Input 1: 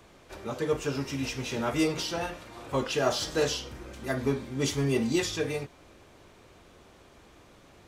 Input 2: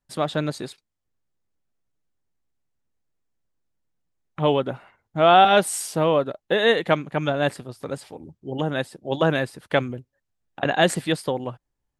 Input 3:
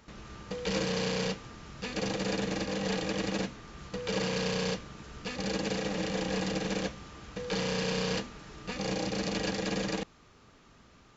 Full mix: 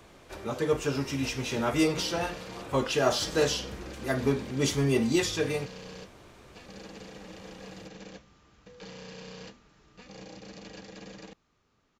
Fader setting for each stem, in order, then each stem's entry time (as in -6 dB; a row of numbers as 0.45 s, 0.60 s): +1.5 dB, mute, -13.5 dB; 0.00 s, mute, 1.30 s